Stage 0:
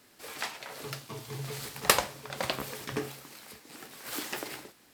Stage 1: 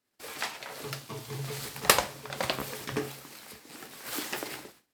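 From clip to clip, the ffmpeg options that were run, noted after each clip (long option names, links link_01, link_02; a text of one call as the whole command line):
ffmpeg -i in.wav -af "agate=range=-24dB:threshold=-57dB:ratio=16:detection=peak,volume=1.5dB" out.wav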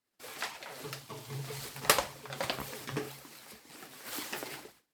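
ffmpeg -i in.wav -af "flanger=delay=0.9:depth=7.1:regen=44:speed=1.9:shape=sinusoidal" out.wav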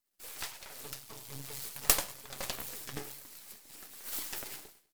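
ffmpeg -i in.wav -af "aecho=1:1:100|200|300:0.1|0.044|0.0194,aeval=exprs='max(val(0),0)':channel_layout=same,crystalizer=i=2:c=0,volume=-2.5dB" out.wav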